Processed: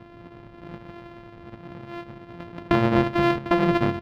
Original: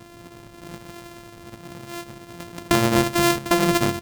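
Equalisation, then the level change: distance through air 360 m; 0.0 dB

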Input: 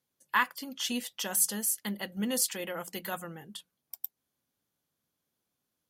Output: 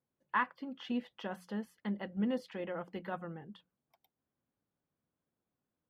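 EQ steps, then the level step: distance through air 350 m; treble shelf 2.2 kHz -10.5 dB; 0.0 dB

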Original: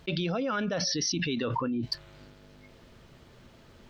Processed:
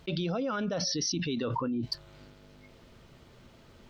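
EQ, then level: band-stop 1.7 kHz, Q 18; dynamic bell 2.2 kHz, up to -6 dB, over -51 dBFS, Q 1.4; -1.0 dB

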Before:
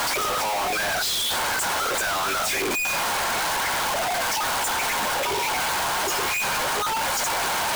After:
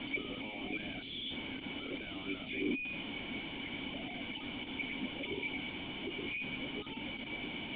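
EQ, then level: cascade formant filter i; +2.5 dB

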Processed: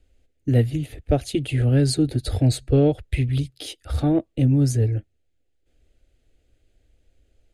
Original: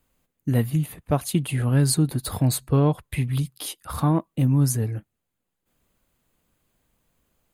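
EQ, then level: distance through air 83 m; bass shelf 150 Hz +11 dB; static phaser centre 430 Hz, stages 4; +4.5 dB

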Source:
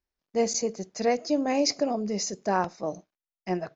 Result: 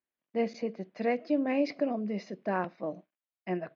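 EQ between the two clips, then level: dynamic bell 830 Hz, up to -4 dB, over -36 dBFS, Q 1.4; distance through air 82 m; cabinet simulation 190–3200 Hz, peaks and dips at 420 Hz -6 dB, 840 Hz -5 dB, 1.3 kHz -4 dB; 0.0 dB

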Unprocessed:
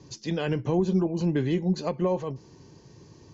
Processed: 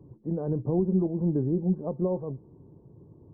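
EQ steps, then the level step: Gaussian low-pass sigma 11 samples; 0.0 dB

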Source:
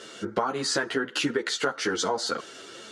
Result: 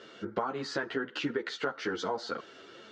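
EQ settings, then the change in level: distance through air 180 m; -5.0 dB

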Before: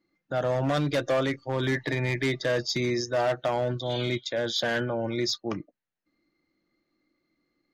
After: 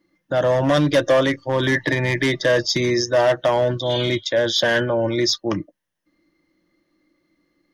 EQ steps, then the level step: rippled EQ curve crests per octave 1.2, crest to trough 6 dB; +8.0 dB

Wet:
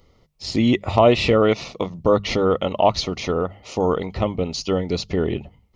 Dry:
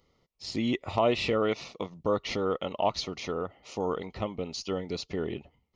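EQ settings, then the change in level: bass shelf 140 Hz +10 dB; peaking EQ 610 Hz +2 dB; hum notches 50/100/150/200 Hz; +8.5 dB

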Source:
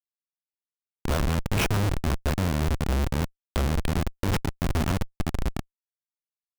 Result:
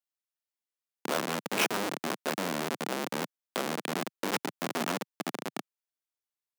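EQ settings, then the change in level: Bessel high-pass 320 Hz, order 8; 0.0 dB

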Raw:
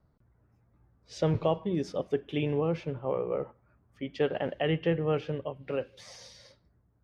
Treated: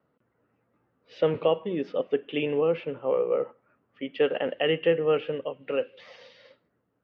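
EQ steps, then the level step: cabinet simulation 220–3700 Hz, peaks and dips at 260 Hz +4 dB, 490 Hz +8 dB, 1.3 kHz +5 dB, 1.9 kHz +4 dB, 2.8 kHz +9 dB; 0.0 dB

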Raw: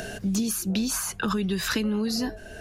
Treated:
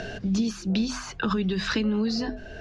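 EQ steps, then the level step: low-pass 5.3 kHz 24 dB/octave; bass shelf 220 Hz +3.5 dB; hum notches 50/100/150/200/250 Hz; 0.0 dB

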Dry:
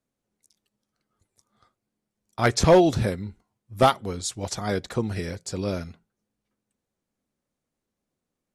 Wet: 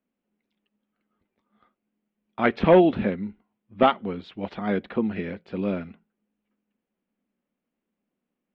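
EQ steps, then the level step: resonant low-pass 2.9 kHz, resonance Q 2.4; distance through air 400 m; resonant low shelf 160 Hz -7.5 dB, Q 3; 0.0 dB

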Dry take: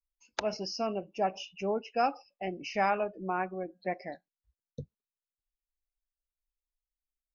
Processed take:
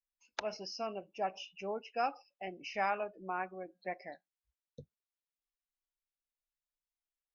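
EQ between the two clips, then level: distance through air 64 m; bass shelf 460 Hz -10 dB; band-stop 4.6 kHz, Q 26; -2.5 dB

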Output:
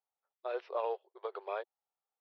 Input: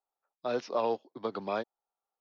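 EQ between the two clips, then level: brick-wall FIR high-pass 360 Hz; low-pass 3.3 kHz 24 dB/octave; -5.0 dB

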